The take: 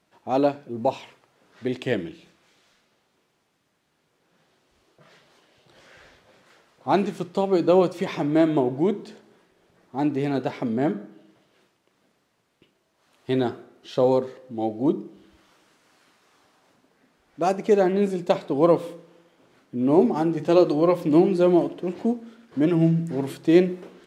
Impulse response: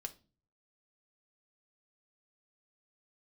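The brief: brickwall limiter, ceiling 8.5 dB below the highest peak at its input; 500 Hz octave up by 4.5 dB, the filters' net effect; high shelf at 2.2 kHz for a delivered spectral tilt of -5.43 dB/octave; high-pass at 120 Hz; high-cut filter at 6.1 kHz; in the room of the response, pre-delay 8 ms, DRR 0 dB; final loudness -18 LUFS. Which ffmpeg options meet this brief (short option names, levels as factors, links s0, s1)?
-filter_complex "[0:a]highpass=120,lowpass=6100,equalizer=f=500:t=o:g=5.5,highshelf=f=2200:g=5.5,alimiter=limit=0.335:level=0:latency=1,asplit=2[s0][s1];[1:a]atrim=start_sample=2205,adelay=8[s2];[s1][s2]afir=irnorm=-1:irlink=0,volume=1.41[s3];[s0][s3]amix=inputs=2:normalize=0,volume=1.12"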